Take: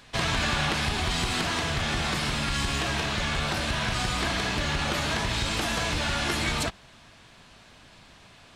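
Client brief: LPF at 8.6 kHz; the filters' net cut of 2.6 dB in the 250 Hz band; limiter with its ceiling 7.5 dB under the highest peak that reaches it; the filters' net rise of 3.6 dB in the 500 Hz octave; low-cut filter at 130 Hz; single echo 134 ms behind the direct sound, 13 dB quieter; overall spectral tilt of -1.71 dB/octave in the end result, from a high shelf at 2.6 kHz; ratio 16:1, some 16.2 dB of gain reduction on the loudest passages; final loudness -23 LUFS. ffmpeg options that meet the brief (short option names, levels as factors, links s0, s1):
-af "highpass=130,lowpass=8600,equalizer=f=250:t=o:g=-4.5,equalizer=f=500:t=o:g=5.5,highshelf=f=2600:g=7.5,acompressor=threshold=0.0141:ratio=16,alimiter=level_in=2.37:limit=0.0631:level=0:latency=1,volume=0.422,aecho=1:1:134:0.224,volume=7.5"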